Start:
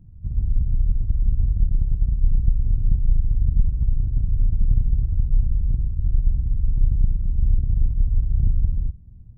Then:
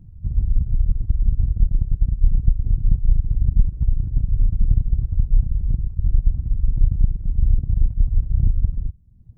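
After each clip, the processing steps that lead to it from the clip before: reverb removal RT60 1 s; gain +3.5 dB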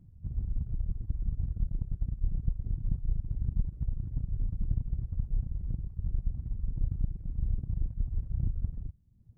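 low shelf 84 Hz -9 dB; gain -7 dB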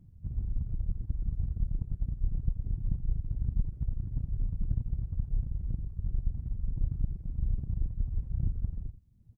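echo 85 ms -13.5 dB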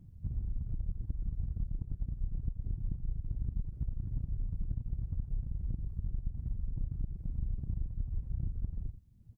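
compressor, threshold -32 dBFS, peak gain reduction 11 dB; gain +1.5 dB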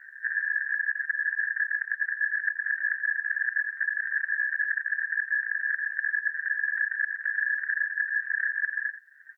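ring modulator 1700 Hz; gain +8.5 dB

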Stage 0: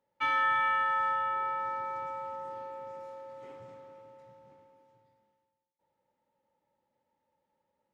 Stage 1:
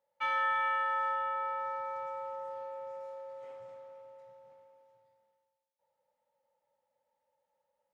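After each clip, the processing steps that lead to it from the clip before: resonant low shelf 430 Hz -7 dB, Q 3; gain -4 dB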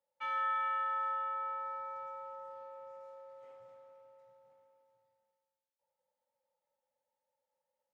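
resonator 260 Hz, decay 0.74 s, mix 60%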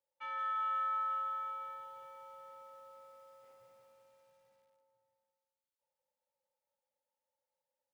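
lo-fi delay 0.178 s, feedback 80%, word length 11-bit, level -6 dB; gain -5 dB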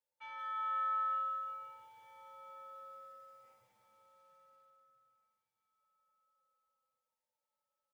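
diffused feedback echo 0.484 s, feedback 61%, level -14.5 dB; endless flanger 6 ms -0.56 Hz

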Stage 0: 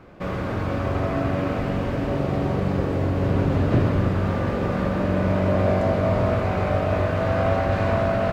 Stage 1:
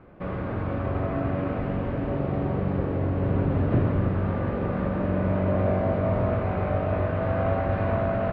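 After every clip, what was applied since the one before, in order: air absorption 420 m; gain -2.5 dB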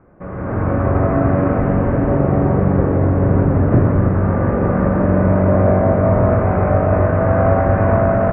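LPF 1900 Hz 24 dB/oct; AGC gain up to 13 dB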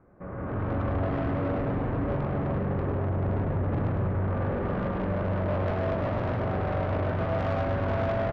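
air absorption 59 m; soft clip -17.5 dBFS, distortion -8 dB; loudspeakers at several distances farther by 36 m -6 dB, 59 m -12 dB; gain -8.5 dB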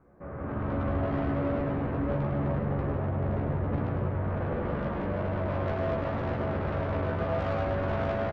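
doubler 14 ms -3 dB; gain -3 dB

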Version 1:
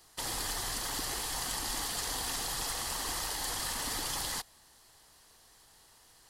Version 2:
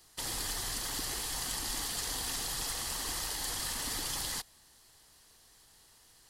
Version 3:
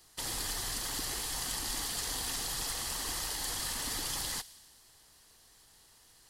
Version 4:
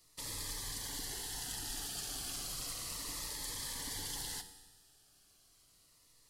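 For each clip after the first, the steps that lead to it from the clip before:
bell 850 Hz -4.5 dB 1.9 oct
thin delay 61 ms, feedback 75%, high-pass 2600 Hz, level -18 dB
resonator 96 Hz, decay 1.4 s, harmonics all, mix 60%; on a send at -10 dB: reverb RT60 0.80 s, pre-delay 7 ms; on the sum: cascading phaser falling 0.33 Hz; gain +1.5 dB

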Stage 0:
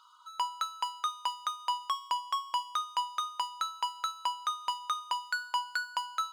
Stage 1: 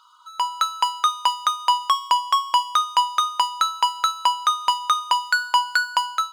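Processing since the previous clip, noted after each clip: AGC gain up to 8 dB; gain +5 dB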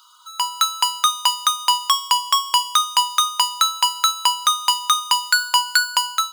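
tilt +4.5 dB/oct; gain -1 dB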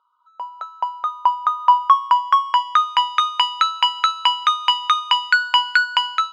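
low-pass sweep 500 Hz -> 2400 Hz, 0.11–3.29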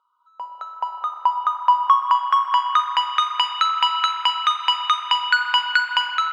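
reverb RT60 2.9 s, pre-delay 38 ms, DRR 5 dB; gain -2.5 dB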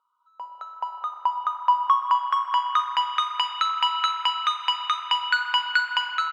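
feedback echo 0.435 s, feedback 58%, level -14.5 dB; gain -4.5 dB

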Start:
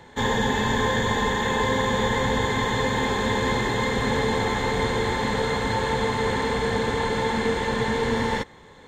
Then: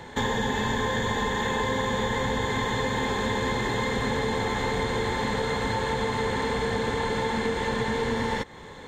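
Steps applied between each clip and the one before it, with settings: compressor 3:1, threshold -32 dBFS, peak gain reduction 10 dB; gain +5.5 dB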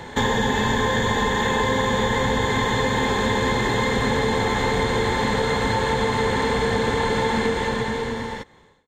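ending faded out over 1.47 s; gain +5.5 dB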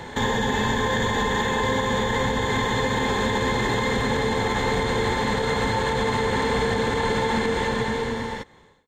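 limiter -14 dBFS, peak gain reduction 5 dB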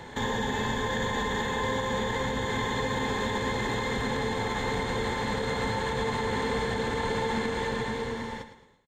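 feedback echo 0.109 s, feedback 34%, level -11 dB; gain -6.5 dB

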